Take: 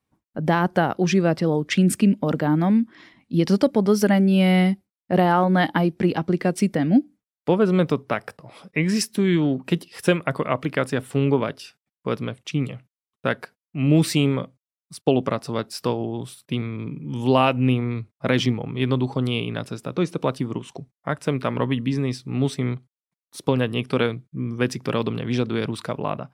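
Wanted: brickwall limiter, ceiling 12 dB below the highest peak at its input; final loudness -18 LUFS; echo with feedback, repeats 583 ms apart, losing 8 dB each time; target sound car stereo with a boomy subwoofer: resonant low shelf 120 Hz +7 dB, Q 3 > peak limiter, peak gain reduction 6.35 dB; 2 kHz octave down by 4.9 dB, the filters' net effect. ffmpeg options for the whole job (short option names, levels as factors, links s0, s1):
-af "equalizer=f=2000:t=o:g=-6.5,alimiter=limit=0.158:level=0:latency=1,lowshelf=f=120:t=q:w=3:g=7,aecho=1:1:583|1166|1749|2332|2915:0.398|0.159|0.0637|0.0255|0.0102,volume=3.98,alimiter=limit=0.398:level=0:latency=1"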